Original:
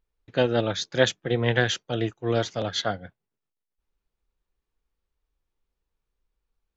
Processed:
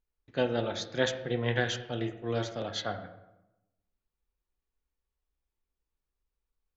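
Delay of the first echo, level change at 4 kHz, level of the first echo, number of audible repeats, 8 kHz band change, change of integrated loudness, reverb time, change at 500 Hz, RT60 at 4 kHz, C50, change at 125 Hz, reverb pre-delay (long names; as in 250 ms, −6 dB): no echo audible, −7.0 dB, no echo audible, no echo audible, can't be measured, −6.5 dB, 0.95 s, −6.5 dB, 0.60 s, 10.0 dB, −7.0 dB, 3 ms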